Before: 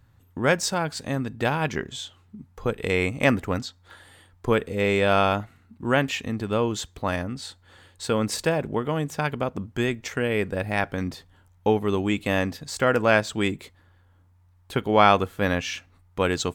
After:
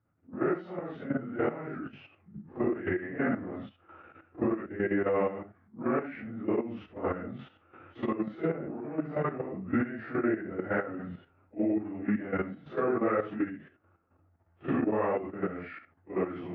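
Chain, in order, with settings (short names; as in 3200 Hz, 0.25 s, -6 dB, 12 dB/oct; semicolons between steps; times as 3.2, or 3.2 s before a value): phase scrambler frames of 0.2 s; recorder AGC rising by 11 dB/s; low shelf 400 Hz -2.5 dB; level quantiser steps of 11 dB; speaker cabinet 110–2400 Hz, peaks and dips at 120 Hz -5 dB, 340 Hz +7 dB, 660 Hz +6 dB, 1000 Hz -9 dB; formant shift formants -4 st; gain -6 dB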